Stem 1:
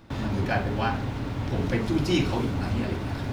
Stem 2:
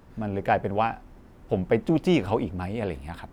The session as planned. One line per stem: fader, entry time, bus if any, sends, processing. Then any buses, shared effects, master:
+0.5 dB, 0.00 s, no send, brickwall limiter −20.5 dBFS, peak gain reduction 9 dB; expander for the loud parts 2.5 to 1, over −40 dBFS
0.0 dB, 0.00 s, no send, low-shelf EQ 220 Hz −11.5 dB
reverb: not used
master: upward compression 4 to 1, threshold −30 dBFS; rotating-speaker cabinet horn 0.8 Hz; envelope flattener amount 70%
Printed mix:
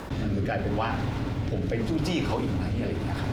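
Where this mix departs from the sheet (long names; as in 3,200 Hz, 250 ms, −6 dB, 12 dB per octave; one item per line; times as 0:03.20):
stem 2 0.0 dB → −7.5 dB
master: missing upward compression 4 to 1, threshold −30 dBFS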